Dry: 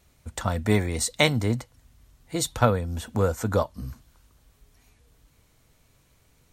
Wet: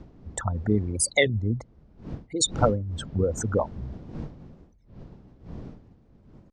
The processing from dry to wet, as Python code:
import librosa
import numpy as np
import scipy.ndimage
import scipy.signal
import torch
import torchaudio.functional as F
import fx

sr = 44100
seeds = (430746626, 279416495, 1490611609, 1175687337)

y = fx.envelope_sharpen(x, sr, power=3.0)
y = fx.dmg_wind(y, sr, seeds[0], corner_hz=210.0, level_db=-39.0)
y = scipy.signal.sosfilt(scipy.signal.butter(2, 8900.0, 'lowpass', fs=sr, output='sos'), y)
y = fx.peak_eq(y, sr, hz=5400.0, db=10.5, octaves=1.5)
y = fx.record_warp(y, sr, rpm=33.33, depth_cents=250.0)
y = y * 10.0 ** (-1.5 / 20.0)